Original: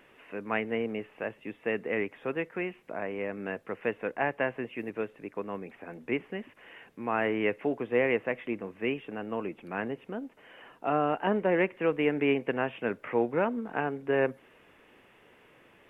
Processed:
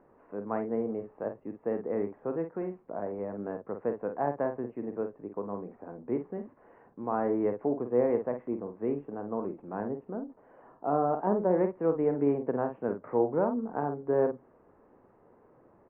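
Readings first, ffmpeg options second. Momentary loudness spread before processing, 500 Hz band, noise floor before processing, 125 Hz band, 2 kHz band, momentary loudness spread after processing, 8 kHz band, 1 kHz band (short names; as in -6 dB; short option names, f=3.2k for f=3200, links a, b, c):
12 LU, +0.5 dB, -60 dBFS, +0.5 dB, -15.5 dB, 12 LU, n/a, -0.5 dB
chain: -filter_complex "[0:a]lowpass=f=1.1k:w=0.5412,lowpass=f=1.1k:w=1.3066,asplit=2[a][b];[b]adelay=49,volume=-7.5dB[c];[a][c]amix=inputs=2:normalize=0"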